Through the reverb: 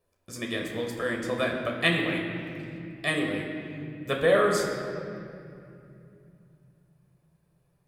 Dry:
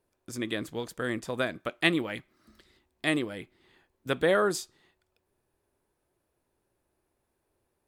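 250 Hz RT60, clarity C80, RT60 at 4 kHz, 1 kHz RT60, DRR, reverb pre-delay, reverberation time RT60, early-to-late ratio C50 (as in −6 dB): 4.5 s, 4.5 dB, 1.7 s, 2.4 s, −0.5 dB, 12 ms, 2.6 s, 3.5 dB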